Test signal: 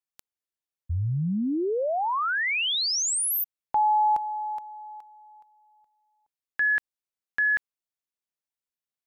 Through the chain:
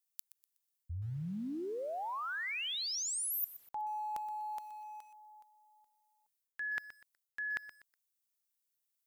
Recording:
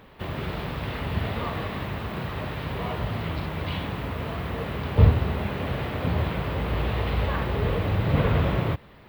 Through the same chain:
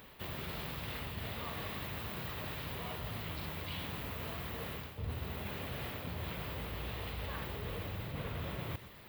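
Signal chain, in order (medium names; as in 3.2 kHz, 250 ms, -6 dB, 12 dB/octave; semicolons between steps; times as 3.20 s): pre-emphasis filter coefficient 0.8; reverse; compression 6:1, threshold -45 dBFS; reverse; bit-crushed delay 123 ms, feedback 35%, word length 10-bit, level -14.5 dB; trim +7 dB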